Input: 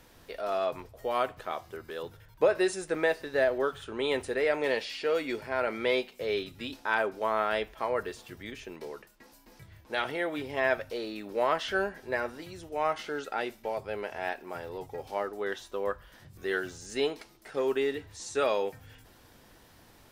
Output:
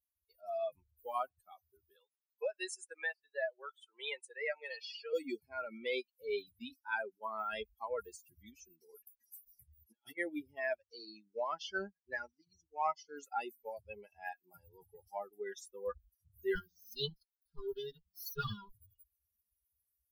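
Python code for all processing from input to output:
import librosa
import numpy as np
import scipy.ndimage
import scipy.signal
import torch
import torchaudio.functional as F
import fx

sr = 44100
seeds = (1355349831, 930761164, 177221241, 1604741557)

y = fx.chain(x, sr, fx.highpass(hz=660.0, slope=12),
    fx.high_shelf(hz=5700.0, db=-10.0),
    fx.band_squash(depth_pct=40), at=(1.96, 5.13))
y = fx.chain(y, sr, fx.over_compress(threshold_db=-38.0, ratio=-0.5),
    fx.peak_eq(hz=110.0, db=-3.5, octaves=2.0),
    fx.hum_notches(base_hz=50, count=10), at=(8.89, 10.18))
y = fx.chain(y, sr, fx.law_mismatch(coded='A'),
    fx.lowpass(hz=6700.0, slope=24),
    fx.high_shelf(hz=4000.0, db=4.5), at=(10.75, 13.17))
y = fx.chain(y, sr, fx.lower_of_two(delay_ms=5.0),
    fx.fixed_phaser(hz=2300.0, stages=6), at=(16.55, 18.74))
y = fx.bin_expand(y, sr, power=3.0)
y = fx.high_shelf(y, sr, hz=6900.0, db=10.0)
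y = fx.rider(y, sr, range_db=5, speed_s=0.5)
y = y * librosa.db_to_amplitude(-1.0)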